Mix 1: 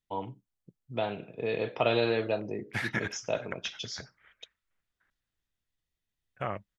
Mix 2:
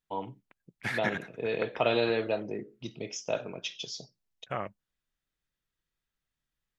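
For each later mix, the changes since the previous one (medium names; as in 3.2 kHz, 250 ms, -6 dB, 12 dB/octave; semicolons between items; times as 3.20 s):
second voice: entry -1.90 s; master: add peaking EQ 86 Hz -7.5 dB 0.76 oct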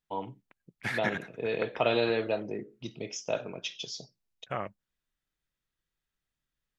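no change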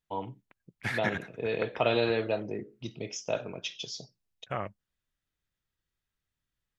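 master: add peaking EQ 86 Hz +7.5 dB 0.76 oct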